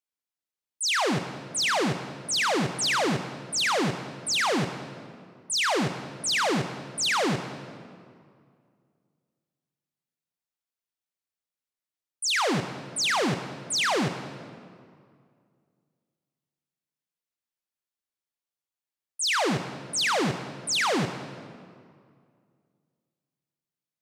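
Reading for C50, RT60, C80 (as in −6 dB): 9.5 dB, 2.2 s, 10.5 dB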